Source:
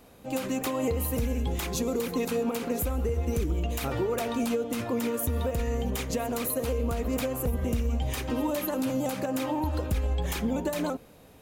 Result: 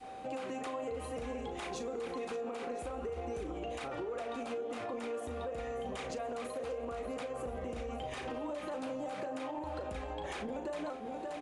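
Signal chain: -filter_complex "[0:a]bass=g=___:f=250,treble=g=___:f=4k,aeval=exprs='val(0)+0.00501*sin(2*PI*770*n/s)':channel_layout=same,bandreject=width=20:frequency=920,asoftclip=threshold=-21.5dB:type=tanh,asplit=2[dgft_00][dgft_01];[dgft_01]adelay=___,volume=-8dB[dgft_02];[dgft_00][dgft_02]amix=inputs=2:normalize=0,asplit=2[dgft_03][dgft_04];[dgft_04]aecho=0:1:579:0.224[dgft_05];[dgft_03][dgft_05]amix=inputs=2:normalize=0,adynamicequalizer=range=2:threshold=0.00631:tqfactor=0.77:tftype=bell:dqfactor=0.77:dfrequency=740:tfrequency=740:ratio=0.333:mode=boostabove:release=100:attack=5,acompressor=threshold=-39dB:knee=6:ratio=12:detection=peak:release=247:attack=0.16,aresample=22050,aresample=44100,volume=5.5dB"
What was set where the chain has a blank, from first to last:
-12, -9, 37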